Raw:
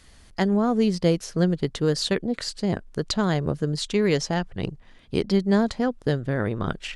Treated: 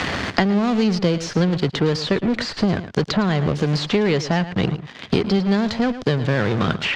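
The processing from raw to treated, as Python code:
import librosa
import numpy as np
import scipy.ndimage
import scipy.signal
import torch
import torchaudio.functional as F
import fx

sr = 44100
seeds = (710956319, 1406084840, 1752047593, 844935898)

p1 = scipy.signal.sosfilt(scipy.signal.butter(4, 82.0, 'highpass', fs=sr, output='sos'), x)
p2 = fx.high_shelf(p1, sr, hz=2700.0, db=10.0)
p3 = fx.fuzz(p2, sr, gain_db=41.0, gate_db=-48.0)
p4 = p2 + F.gain(torch.from_numpy(p3), -11.0).numpy()
p5 = fx.air_absorb(p4, sr, metres=180.0)
p6 = p5 + fx.echo_single(p5, sr, ms=109, db=-15.0, dry=0)
p7 = fx.band_squash(p6, sr, depth_pct=100)
y = F.gain(torch.from_numpy(p7), -1.0).numpy()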